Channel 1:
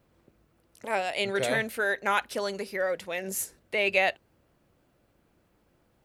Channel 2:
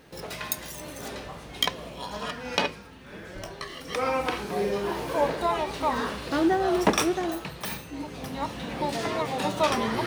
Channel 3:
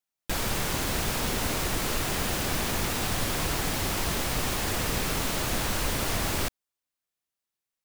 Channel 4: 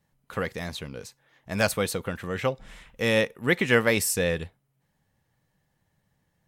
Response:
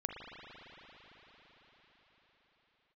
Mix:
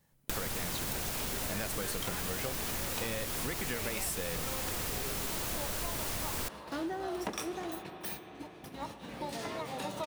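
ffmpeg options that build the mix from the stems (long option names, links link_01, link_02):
-filter_complex "[0:a]agate=range=-33dB:threshold=-59dB:ratio=3:detection=peak,volume=-12dB[link_01];[1:a]agate=range=-13dB:threshold=-34dB:ratio=16:detection=peak,adelay=400,volume=-12.5dB,asplit=2[link_02][link_03];[link_03]volume=-6.5dB[link_04];[2:a]volume=-1dB[link_05];[3:a]acompressor=threshold=-25dB:ratio=6,volume=0.5dB[link_06];[4:a]atrim=start_sample=2205[link_07];[link_04][link_07]afir=irnorm=-1:irlink=0[link_08];[link_01][link_02][link_05][link_06][link_08]amix=inputs=5:normalize=0,highshelf=frequency=7100:gain=7.5,acompressor=threshold=-33dB:ratio=6"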